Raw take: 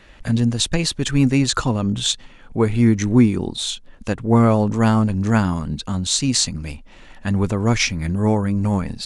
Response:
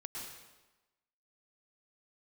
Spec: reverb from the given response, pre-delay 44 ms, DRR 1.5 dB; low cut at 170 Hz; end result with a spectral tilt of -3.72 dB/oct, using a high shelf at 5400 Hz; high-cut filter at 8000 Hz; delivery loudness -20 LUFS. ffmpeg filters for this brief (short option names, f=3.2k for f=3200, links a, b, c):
-filter_complex "[0:a]highpass=170,lowpass=8k,highshelf=f=5.4k:g=8.5,asplit=2[a][b];[1:a]atrim=start_sample=2205,adelay=44[c];[b][c]afir=irnorm=-1:irlink=0,volume=-0.5dB[d];[a][d]amix=inputs=2:normalize=0,volume=-2.5dB"